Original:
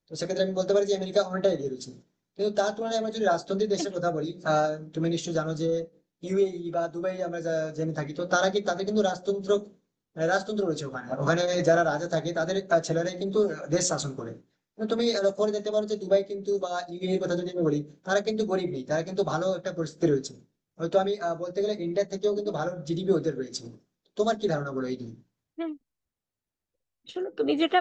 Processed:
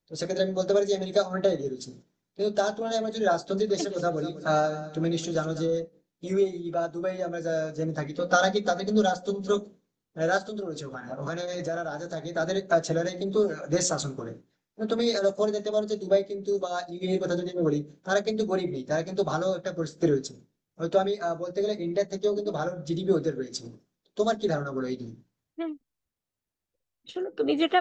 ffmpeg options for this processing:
-filter_complex "[0:a]asettb=1/sr,asplit=3[a][b][c];[a]atrim=end=3.384[d];[b]atrim=start=3.38:end=5.77,asetpts=PTS-STARTPTS,afade=t=in:d=0.004:c=qsin,afade=t=out:st=2.386:d=0.004:c=qsin,aecho=1:1:194|388|582:0.2|0.0638|0.0204,atrim=end_sample=105399[e];[c]atrim=start=5.766[f];[d][e]acrossfade=d=0.004:c1=hsin:c2=qsin[g];[g][f]acrossfade=d=0.004:c1=qsin:c2=hsin,asettb=1/sr,asplit=3[h][i][j];[h]atrim=end=8.174[k];[i]atrim=start=8.17:end=9.59,asetpts=PTS-STARTPTS,afade=t=in:d=0.004:c=qsin,afade=t=out:st=1.416:d=0.004:c=qsin,aecho=1:1:4.1:0.65,atrim=end_sample=62622[l];[j]atrim=start=9.586[m];[k][l]acrossfade=d=0.004:c1=hsin:c2=qsin[n];[n][m]acrossfade=d=0.004:c1=qsin:c2=hsin,asplit=3[o][p][q];[o]afade=t=out:st=10.38:d=0.02[r];[p]acompressor=threshold=-35dB:ratio=2:attack=3.2:release=140:knee=1:detection=peak,afade=t=in:st=10.38:d=0.02,afade=t=out:st=12.34:d=0.02[s];[q]afade=t=in:st=12.34:d=0.02[t];[r][s][t]amix=inputs=3:normalize=0"

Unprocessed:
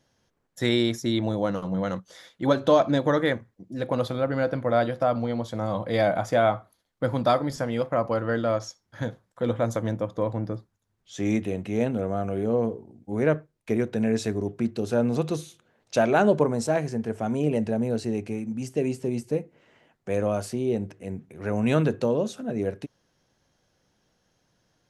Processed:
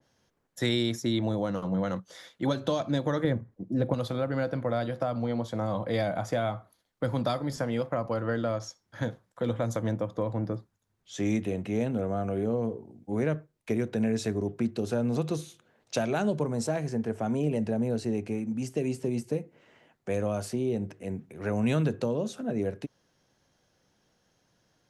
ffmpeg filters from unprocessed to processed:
-filter_complex "[0:a]asettb=1/sr,asplit=3[a][b][c];[a]atrim=end=3.244[d];[b]atrim=start=3.24:end=3.94,asetpts=PTS-STARTPTS,afade=t=in:d=0.004:c=qsin,afade=t=out:st=0.696:d=0.004:c=qsin,tiltshelf=f=1.4k:g=8[e];[c]atrim=start=3.936[f];[d][e]acrossfade=d=0.004:c1=hsin:c2=qsin[g];[g][f]acrossfade=d=0.004:c1=qsin:c2=hsin,lowshelf=f=60:g=-5.5,acrossover=split=190|3000[h][i][j];[i]acompressor=threshold=-27dB:ratio=6[k];[h][k][j]amix=inputs=3:normalize=0,adynamicequalizer=threshold=0.00501:dfrequency=2100:dqfactor=0.7:tfrequency=2100:tqfactor=0.7:attack=5:release=100:ratio=0.375:range=1.5:mode=cutabove:tftype=highshelf"

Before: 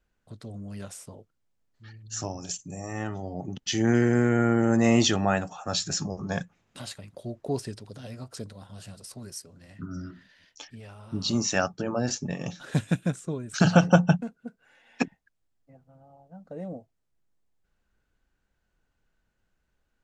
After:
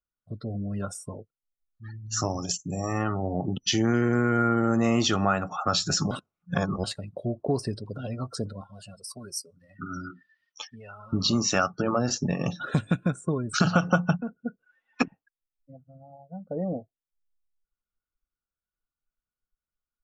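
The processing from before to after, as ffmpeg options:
-filter_complex "[0:a]asettb=1/sr,asplit=3[a][b][c];[a]atrim=end=8.614[d];[b]atrim=start=8.61:end=11.13,asetpts=PTS-STARTPTS,afade=t=in:d=0.004:c=qsin,afade=t=out:st=2.516:d=0.004:c=qsin,lowshelf=f=320:g=-11.5[e];[c]atrim=start=11.126[f];[d][e]acrossfade=d=0.004:c1=hsin:c2=qsin[g];[g][f]acrossfade=d=0.004:c1=qsin:c2=hsin,asplit=3[h][i][j];[h]atrim=end=6.112[k];[i]atrim=start=6.108:end=6.842,asetpts=PTS-STARTPTS,areverse[l];[j]atrim=start=6.838[m];[k][l]acrossfade=d=0.004:c1=hsin:c2=hsin[n];[n][m]acrossfade=d=0.004:c1=hsin:c2=hsin,afftdn=nr=29:nf=-47,superequalizer=10b=2.51:11b=0.708:15b=0.631,acompressor=threshold=-29dB:ratio=3,volume=7dB"

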